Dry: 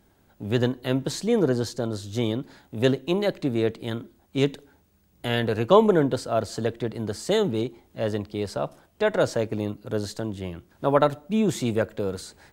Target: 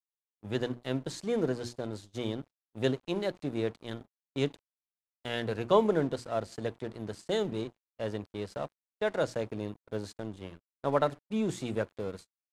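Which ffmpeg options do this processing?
ffmpeg -i in.wav -af "bandreject=frequency=60:width_type=h:width=6,bandreject=frequency=120:width_type=h:width=6,bandreject=frequency=180:width_type=h:width=6,bandreject=frequency=240:width_type=h:width=6,bandreject=frequency=300:width_type=h:width=6,bandreject=frequency=360:width_type=h:width=6,aeval=exprs='sgn(val(0))*max(abs(val(0))-0.00944,0)':channel_layout=same,agate=range=-39dB:threshold=-39dB:ratio=16:detection=peak,lowpass=frequency=11000:width=0.5412,lowpass=frequency=11000:width=1.3066,volume=-7dB" out.wav

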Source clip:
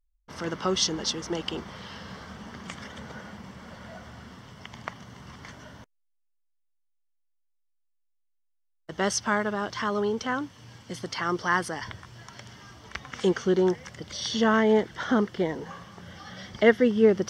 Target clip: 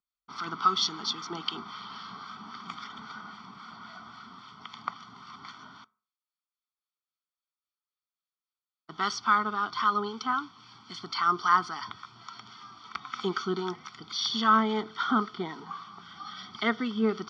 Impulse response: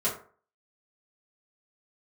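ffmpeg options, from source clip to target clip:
-filter_complex "[0:a]acrossover=split=1100[link_01][link_02];[link_01]aeval=exprs='val(0)*(1-0.5/2+0.5/2*cos(2*PI*3.7*n/s))':channel_layout=same[link_03];[link_02]aeval=exprs='val(0)*(1-0.5/2-0.5/2*cos(2*PI*3.7*n/s))':channel_layout=same[link_04];[link_03][link_04]amix=inputs=2:normalize=0,highpass=330,equalizer=frequency=340:width_type=q:width=4:gain=-5,equalizer=frequency=490:width_type=q:width=4:gain=-9,equalizer=frequency=910:width_type=q:width=4:gain=-4,equalizer=frequency=1300:width_type=q:width=4:gain=7,equalizer=frequency=2100:width_type=q:width=4:gain=-8,equalizer=frequency=4200:width_type=q:width=4:gain=5,lowpass=frequency=4800:width=0.5412,lowpass=frequency=4800:width=1.3066,aecho=1:1:0.9:0.99,asplit=2[link_05][link_06];[1:a]atrim=start_sample=2205[link_07];[link_06][link_07]afir=irnorm=-1:irlink=0,volume=-26.5dB[link_08];[link_05][link_08]amix=inputs=2:normalize=0"

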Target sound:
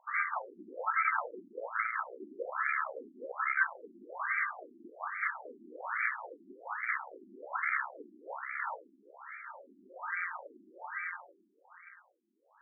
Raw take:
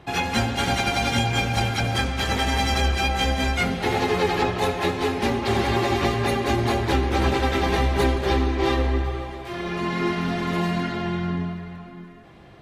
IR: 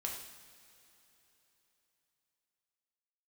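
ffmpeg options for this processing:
-af "aeval=exprs='max(val(0),0)':channel_layout=same,lowpass=frequency=3100:width_type=q:width=0.5098,lowpass=frequency=3100:width_type=q:width=0.6013,lowpass=frequency=3100:width_type=q:width=0.9,lowpass=frequency=3100:width_type=q:width=2.563,afreqshift=-3700,afftfilt=real='re*between(b*sr/1024,260*pow(1700/260,0.5+0.5*sin(2*PI*1.2*pts/sr))/1.41,260*pow(1700/260,0.5+0.5*sin(2*PI*1.2*pts/sr))*1.41)':imag='im*between(b*sr/1024,260*pow(1700/260,0.5+0.5*sin(2*PI*1.2*pts/sr))/1.41,260*pow(1700/260,0.5+0.5*sin(2*PI*1.2*pts/sr))*1.41)':win_size=1024:overlap=0.75,volume=4.5dB"

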